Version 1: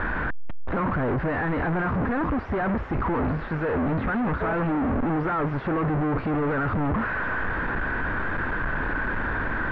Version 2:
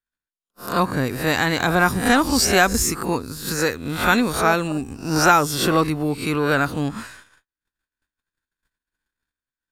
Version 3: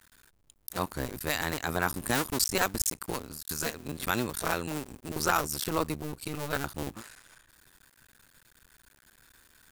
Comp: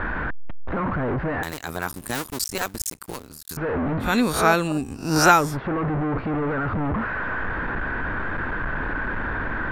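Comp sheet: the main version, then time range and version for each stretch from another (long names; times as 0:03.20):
1
0:01.43–0:03.57: punch in from 3
0:04.11–0:05.45: punch in from 2, crossfade 0.24 s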